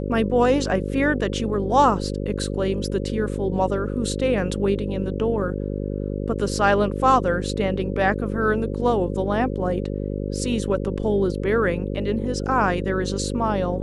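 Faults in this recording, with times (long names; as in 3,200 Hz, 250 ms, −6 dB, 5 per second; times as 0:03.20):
mains buzz 50 Hz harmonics 11 −27 dBFS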